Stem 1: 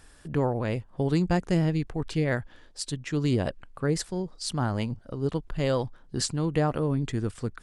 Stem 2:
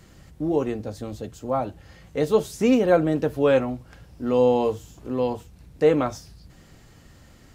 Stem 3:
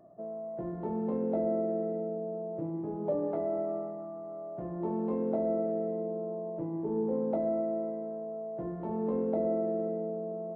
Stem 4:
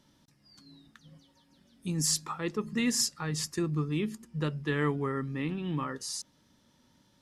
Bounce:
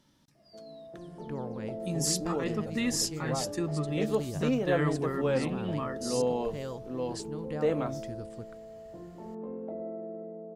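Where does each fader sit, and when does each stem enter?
-13.0, -10.0, -8.5, -1.5 dB; 0.95, 1.80, 0.35, 0.00 s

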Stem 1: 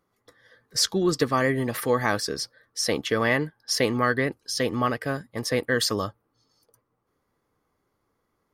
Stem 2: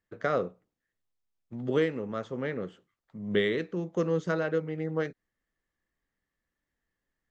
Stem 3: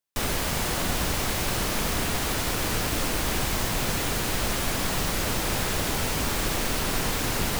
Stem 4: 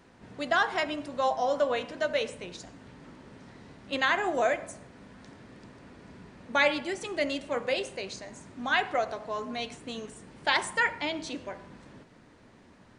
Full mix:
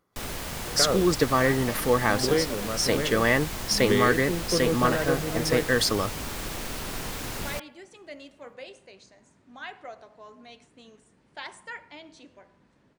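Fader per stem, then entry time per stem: +0.5, +1.5, -7.5, -13.5 dB; 0.00, 0.55, 0.00, 0.90 s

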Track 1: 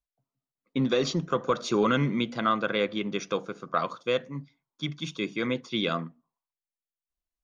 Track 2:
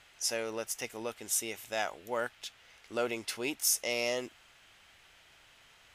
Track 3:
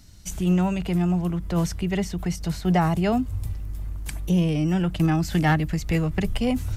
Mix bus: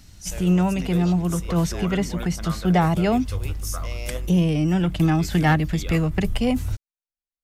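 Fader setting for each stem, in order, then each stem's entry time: -10.5, -5.5, +2.0 dB; 0.00, 0.00, 0.00 s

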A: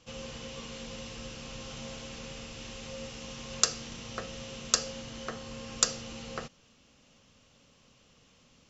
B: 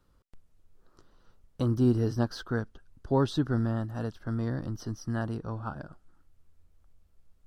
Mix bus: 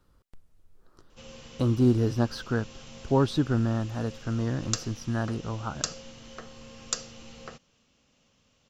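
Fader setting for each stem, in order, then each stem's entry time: -5.0, +2.5 dB; 1.10, 0.00 s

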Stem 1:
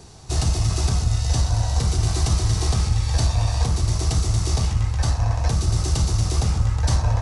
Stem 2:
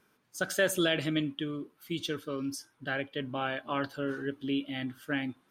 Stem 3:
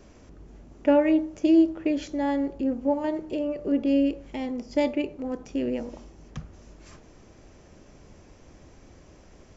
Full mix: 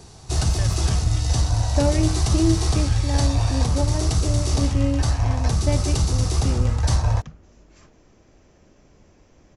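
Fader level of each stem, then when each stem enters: 0.0, -11.5, -3.0 dB; 0.00, 0.00, 0.90 s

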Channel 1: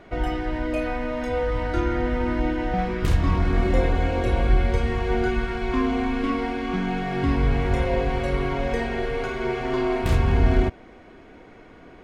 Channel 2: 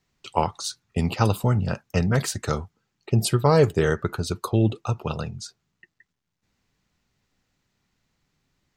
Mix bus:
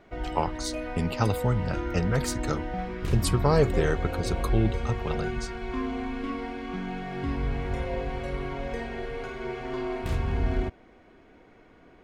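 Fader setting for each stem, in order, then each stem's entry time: -8.0, -4.5 dB; 0.00, 0.00 s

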